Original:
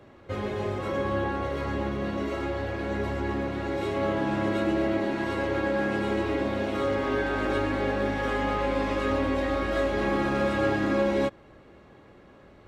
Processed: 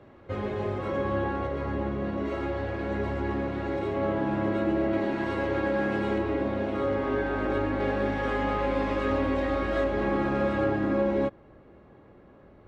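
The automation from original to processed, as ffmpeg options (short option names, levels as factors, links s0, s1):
-af "asetnsamples=n=441:p=0,asendcmd='1.47 lowpass f 1400;2.25 lowpass f 2500;3.79 lowpass f 1500;4.93 lowpass f 3000;6.18 lowpass f 1500;7.8 lowpass f 2900;9.84 lowpass f 1700;10.64 lowpass f 1100',lowpass=f=2300:p=1"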